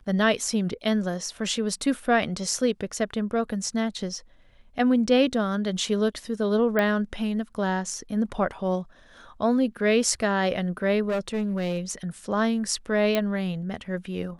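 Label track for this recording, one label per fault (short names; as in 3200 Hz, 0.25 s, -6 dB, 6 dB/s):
6.790000	6.790000	pop -12 dBFS
11.080000	11.780000	clipped -22.5 dBFS
13.150000	13.150000	pop -10 dBFS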